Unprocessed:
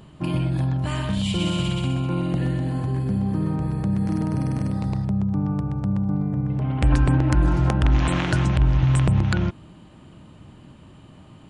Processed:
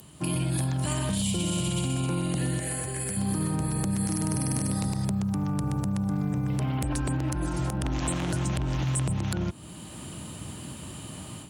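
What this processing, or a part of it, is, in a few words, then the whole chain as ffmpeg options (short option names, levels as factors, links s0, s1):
FM broadcast chain: -filter_complex "[0:a]highpass=f=52:w=0.5412,highpass=f=52:w=1.3066,dynaudnorm=f=200:g=3:m=3.55,acrossover=split=160|1000[s0][s1][s2];[s0]acompressor=threshold=0.0562:ratio=4[s3];[s1]acompressor=threshold=0.0708:ratio=4[s4];[s2]acompressor=threshold=0.0141:ratio=4[s5];[s3][s4][s5]amix=inputs=3:normalize=0,aemphasis=mode=production:type=50fm,alimiter=limit=0.168:level=0:latency=1:release=36,asoftclip=type=hard:threshold=0.15,lowpass=f=15000:w=0.5412,lowpass=f=15000:w=1.3066,aemphasis=mode=production:type=50fm,asettb=1/sr,asplit=3[s6][s7][s8];[s6]atrim=end=2.594[s9];[s7]atrim=start=2.59:end=3.17,asetpts=PTS-STARTPTS,afade=t=in:d=0.004:c=qsin,afade=t=out:st=0.576:d=0.004:c=qsin,equalizer=f=125:t=o:w=1:g=-6,equalizer=f=250:t=o:w=1:g=-10,equalizer=f=500:t=o:w=1:g=4,equalizer=f=1000:t=o:w=1:g=-7,equalizer=f=2000:t=o:w=1:g=8,equalizer=f=4000:t=o:w=1:g=-7,equalizer=f=8000:t=o:w=1:g=5[s10];[s8]atrim=start=3.166[s11];[s9][s10]acrossfade=d=0.004:c1=hsin:c2=qsin[s12];[s12][s11]acrossfade=d=0.004:c1=qsin:c2=hsin,volume=0.596"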